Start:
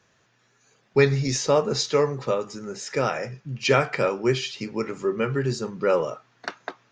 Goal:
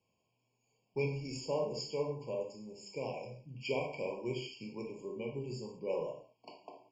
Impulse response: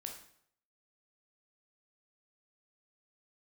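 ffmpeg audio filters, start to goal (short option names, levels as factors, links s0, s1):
-filter_complex "[0:a]flanger=delay=3.5:depth=5:regen=-79:speed=0.77:shape=sinusoidal[s0];[1:a]atrim=start_sample=2205,afade=t=out:st=0.25:d=0.01,atrim=end_sample=11466[s1];[s0][s1]afir=irnorm=-1:irlink=0,afftfilt=real='re*eq(mod(floor(b*sr/1024/1100),2),0)':imag='im*eq(mod(floor(b*sr/1024/1100),2),0)':win_size=1024:overlap=0.75,volume=0.473"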